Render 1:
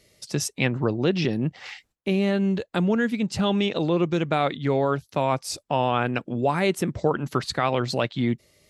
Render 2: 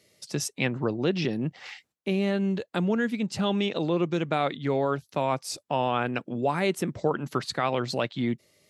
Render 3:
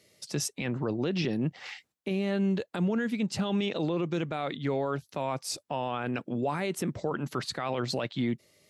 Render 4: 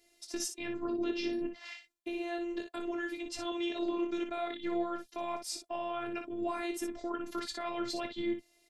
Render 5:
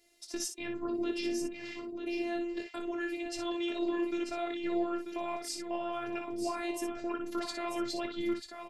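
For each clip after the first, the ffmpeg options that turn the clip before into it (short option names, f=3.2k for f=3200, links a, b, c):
-af "highpass=120,volume=-3dB"
-af "alimiter=limit=-20.5dB:level=0:latency=1:release=20"
-af "aecho=1:1:22|59:0.355|0.422,afftfilt=real='hypot(re,im)*cos(PI*b)':imag='0':win_size=512:overlap=0.75,volume=-2dB"
-af "aecho=1:1:940:0.422"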